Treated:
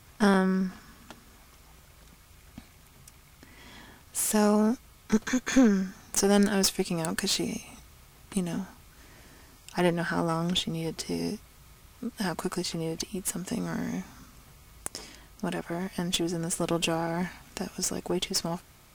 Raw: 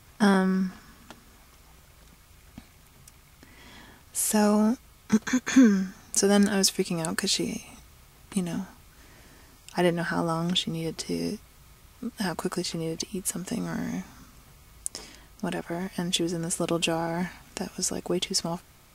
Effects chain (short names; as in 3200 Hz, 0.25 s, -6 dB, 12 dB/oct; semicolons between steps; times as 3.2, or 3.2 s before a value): one diode to ground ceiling -23 dBFS